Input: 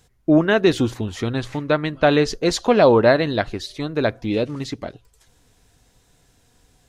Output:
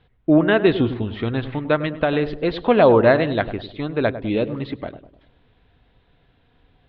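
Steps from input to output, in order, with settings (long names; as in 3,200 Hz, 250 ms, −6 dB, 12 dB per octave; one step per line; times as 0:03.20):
Butterworth low-pass 3,700 Hz 48 dB per octave
0:01.86–0:02.65: downward compressor, threshold −16 dBFS, peak gain reduction 6 dB
feedback echo with a low-pass in the loop 101 ms, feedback 49%, low-pass 960 Hz, level −11 dB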